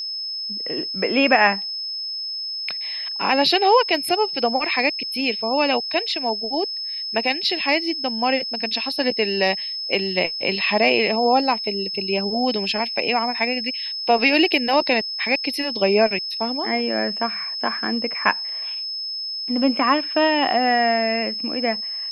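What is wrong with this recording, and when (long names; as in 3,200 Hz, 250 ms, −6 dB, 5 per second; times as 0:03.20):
whistle 5,200 Hz −26 dBFS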